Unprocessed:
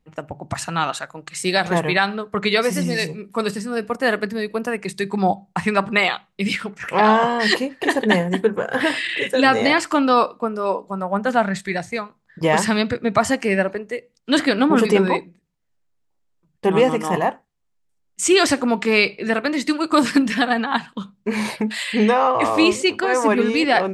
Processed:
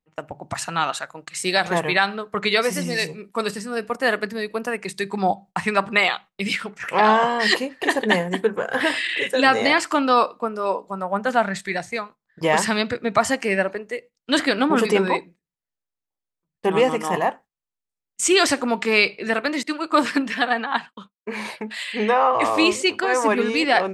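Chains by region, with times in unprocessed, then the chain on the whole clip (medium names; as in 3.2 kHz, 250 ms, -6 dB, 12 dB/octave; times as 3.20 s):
19.63–22.33 s: expander -38 dBFS + tone controls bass -6 dB, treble -7 dB + three bands expanded up and down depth 40%
whole clip: gate -39 dBFS, range -12 dB; bass shelf 300 Hz -7.5 dB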